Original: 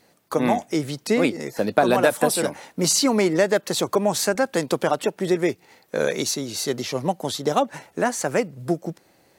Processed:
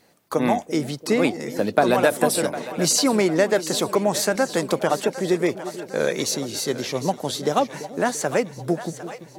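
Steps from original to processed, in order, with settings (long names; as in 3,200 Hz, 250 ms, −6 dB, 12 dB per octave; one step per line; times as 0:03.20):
echo with a time of its own for lows and highs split 520 Hz, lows 339 ms, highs 755 ms, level −13 dB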